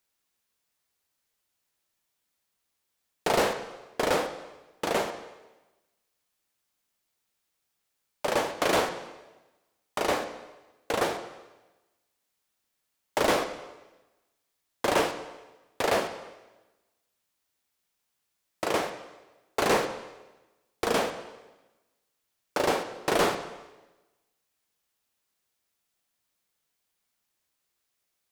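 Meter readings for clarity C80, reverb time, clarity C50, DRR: 11.5 dB, 1.1 s, 9.5 dB, 7.0 dB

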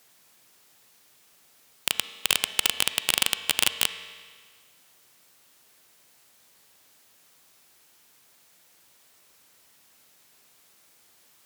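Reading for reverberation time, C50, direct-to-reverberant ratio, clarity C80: 1.7 s, 11.5 dB, 11.0 dB, 13.0 dB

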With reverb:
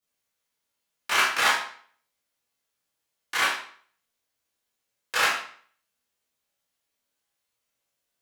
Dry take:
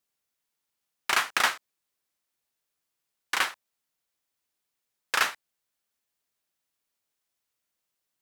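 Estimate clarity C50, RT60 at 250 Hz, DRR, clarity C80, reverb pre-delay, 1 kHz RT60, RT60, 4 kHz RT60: 2.5 dB, 0.55 s, -10.0 dB, 7.5 dB, 16 ms, 0.50 s, 0.50 s, 0.45 s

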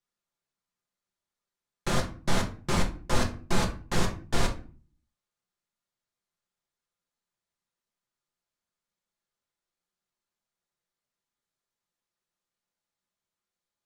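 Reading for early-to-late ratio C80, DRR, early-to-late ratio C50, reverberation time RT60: 17.0 dB, 0.5 dB, 11.5 dB, 0.40 s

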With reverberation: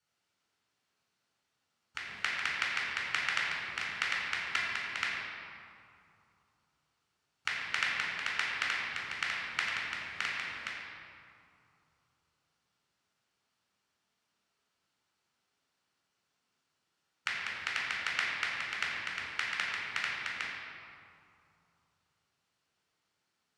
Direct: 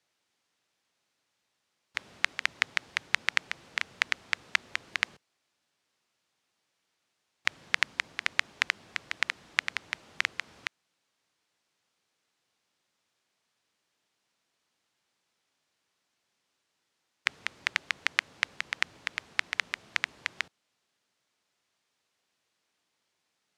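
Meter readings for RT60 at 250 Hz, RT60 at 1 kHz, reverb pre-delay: 3.0 s, 2.7 s, 3 ms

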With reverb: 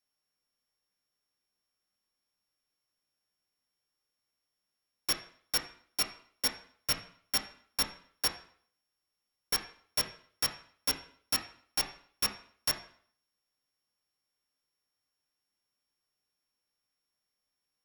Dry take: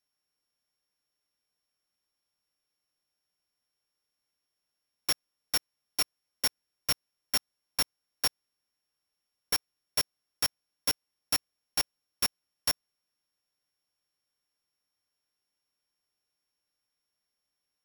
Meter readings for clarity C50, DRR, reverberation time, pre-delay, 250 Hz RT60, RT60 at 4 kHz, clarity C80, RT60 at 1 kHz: 10.0 dB, 3.5 dB, 0.55 s, 6 ms, 0.55 s, 0.55 s, 13.5 dB, 0.55 s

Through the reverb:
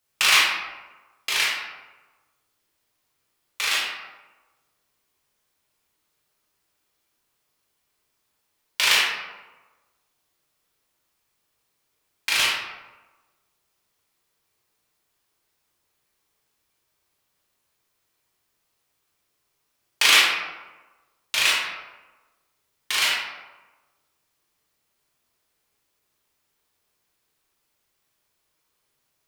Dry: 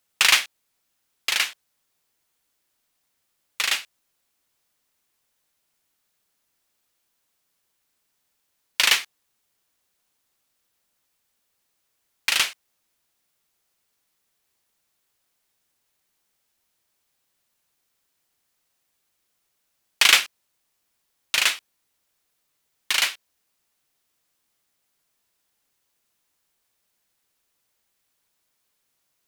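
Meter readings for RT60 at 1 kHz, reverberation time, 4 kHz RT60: 1.2 s, 1.2 s, 0.60 s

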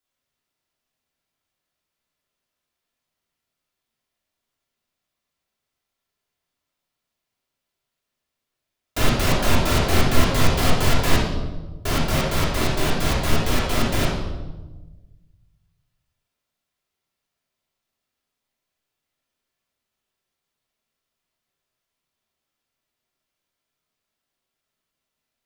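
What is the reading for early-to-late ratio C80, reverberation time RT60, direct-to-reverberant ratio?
4.0 dB, 1.2 s, -6.5 dB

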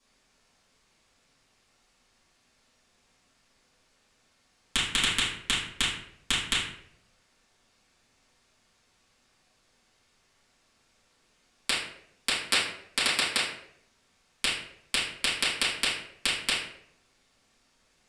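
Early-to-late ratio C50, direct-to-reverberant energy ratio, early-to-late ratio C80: 2.0 dB, -11.5 dB, 6.5 dB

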